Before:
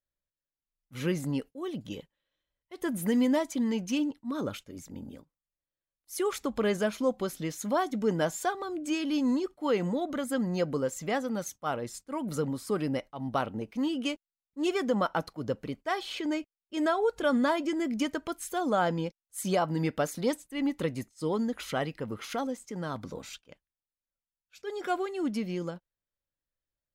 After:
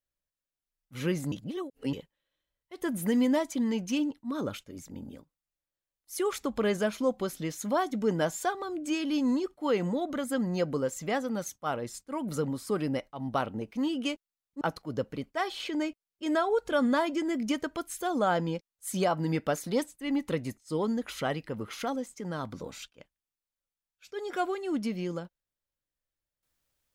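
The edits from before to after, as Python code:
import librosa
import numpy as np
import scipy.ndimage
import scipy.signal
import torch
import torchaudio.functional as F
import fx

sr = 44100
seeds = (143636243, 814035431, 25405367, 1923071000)

y = fx.edit(x, sr, fx.reverse_span(start_s=1.32, length_s=0.61),
    fx.cut(start_s=14.61, length_s=0.51), tone=tone)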